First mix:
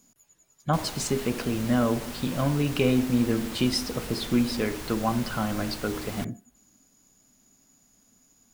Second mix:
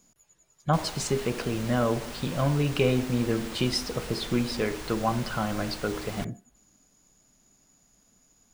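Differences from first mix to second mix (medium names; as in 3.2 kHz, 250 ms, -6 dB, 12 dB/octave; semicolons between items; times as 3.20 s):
speech: add bass shelf 480 Hz +4 dB; master: add fifteen-band graphic EQ 100 Hz -4 dB, 250 Hz -8 dB, 16 kHz -9 dB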